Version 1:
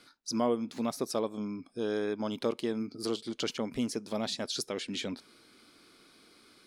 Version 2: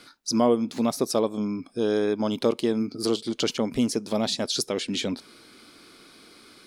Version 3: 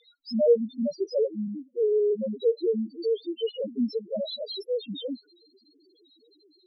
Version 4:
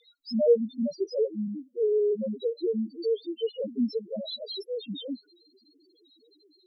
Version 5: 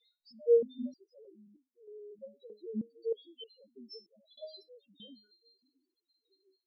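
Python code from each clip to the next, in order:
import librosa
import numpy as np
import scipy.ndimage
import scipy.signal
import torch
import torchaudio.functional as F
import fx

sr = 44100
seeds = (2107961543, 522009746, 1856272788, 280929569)

y1 = fx.dynamic_eq(x, sr, hz=1700.0, q=1.0, threshold_db=-50.0, ratio=4.0, max_db=-4)
y1 = y1 * librosa.db_to_amplitude(8.5)
y2 = fx.graphic_eq(y1, sr, hz=(500, 2000, 4000, 8000), db=(8, 3, 11, -8))
y2 = fx.spec_topn(y2, sr, count=1)
y2 = y2 * librosa.db_to_amplitude(1.0)
y3 = fx.notch_cascade(y2, sr, direction='falling', hz=0.34)
y4 = fx.resonator_held(y3, sr, hz=3.2, low_hz=210.0, high_hz=840.0)
y4 = y4 * librosa.db_to_amplitude(3.0)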